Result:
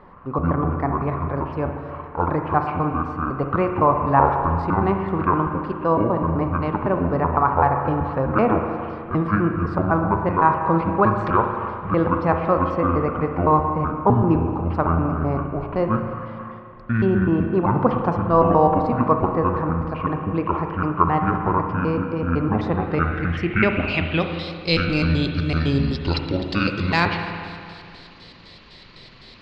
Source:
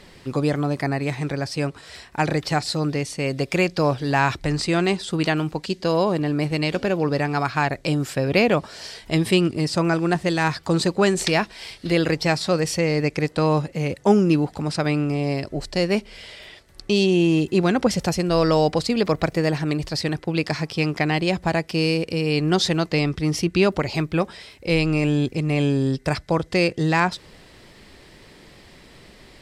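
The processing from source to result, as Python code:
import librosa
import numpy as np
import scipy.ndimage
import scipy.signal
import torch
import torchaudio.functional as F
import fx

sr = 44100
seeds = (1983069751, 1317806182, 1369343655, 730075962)

y = fx.pitch_trill(x, sr, semitones=-10.0, every_ms=127)
y = fx.rev_spring(y, sr, rt60_s=2.4, pass_ms=(36, 58), chirp_ms=55, drr_db=4.0)
y = fx.filter_sweep_lowpass(y, sr, from_hz=1100.0, to_hz=4200.0, start_s=22.74, end_s=24.52, q=4.4)
y = y * librosa.db_to_amplitude(-1.5)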